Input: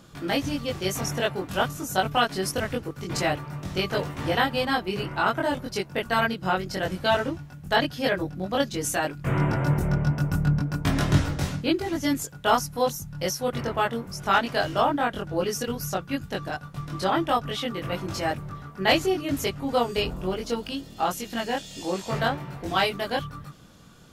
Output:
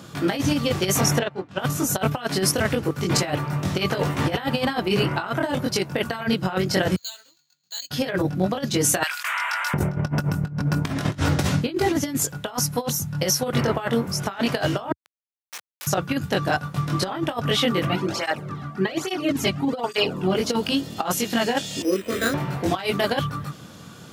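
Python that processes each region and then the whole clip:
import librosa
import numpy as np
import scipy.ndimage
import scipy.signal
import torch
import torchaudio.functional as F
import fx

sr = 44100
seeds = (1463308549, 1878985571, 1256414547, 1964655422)

y = fx.chain(x, sr, fx.air_absorb(metres=110.0),
    fx.upward_expand(threshold_db=-35.0, expansion=2.5), at=(1.19, 1.59))
y = fx.chain(y, sr, fx.bandpass_q(hz=4300.0, q=18.0),
    fx.resample_bad(factor=4, down='filtered', up='hold'), at=(6.96, 7.91))
y = fx.chain(y, sr, fx.bessel_highpass(hz=1700.0, order=6),
    fx.env_flatten(amount_pct=70), at=(9.03, 9.74))
y = fx.chain(y, sr, fx.differentiator(),
    fx.schmitt(flips_db=-28.0),
    fx.highpass(hz=1400.0, slope=12), at=(14.92, 15.87))
y = fx.chain(y, sr, fx.high_shelf(hz=8700.0, db=-9.5),
    fx.flanger_cancel(hz=1.2, depth_ms=2.4), at=(17.85, 20.35))
y = fx.chain(y, sr, fx.dynamic_eq(hz=750.0, q=1.6, threshold_db=-38.0, ratio=4.0, max_db=-7),
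    fx.fixed_phaser(hz=350.0, stages=4),
    fx.resample_bad(factor=8, down='filtered', up='hold'), at=(21.82, 22.34))
y = scipy.signal.sosfilt(scipy.signal.butter(4, 83.0, 'highpass', fs=sr, output='sos'), y)
y = fx.over_compress(y, sr, threshold_db=-28.0, ratio=-0.5)
y = y * 10.0 ** (6.5 / 20.0)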